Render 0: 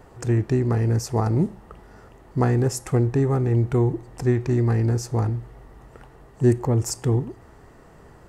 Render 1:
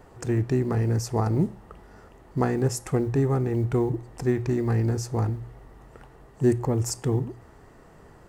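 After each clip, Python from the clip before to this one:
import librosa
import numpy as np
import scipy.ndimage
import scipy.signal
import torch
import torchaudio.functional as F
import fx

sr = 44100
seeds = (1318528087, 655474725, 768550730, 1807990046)

y = fx.quant_float(x, sr, bits=6)
y = fx.hum_notches(y, sr, base_hz=60, count=2)
y = y * librosa.db_to_amplitude(-2.0)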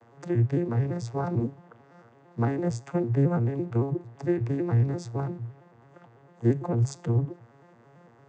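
y = fx.vocoder_arp(x, sr, chord='minor triad', root=46, every_ms=112)
y = fx.low_shelf(y, sr, hz=420.0, db=-11.5)
y = y * librosa.db_to_amplitude(8.5)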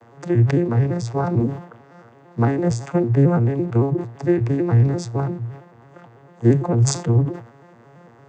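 y = fx.sustainer(x, sr, db_per_s=110.0)
y = y * librosa.db_to_amplitude(7.5)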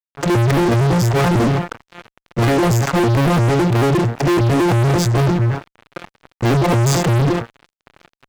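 y = fx.fuzz(x, sr, gain_db=34.0, gate_db=-40.0)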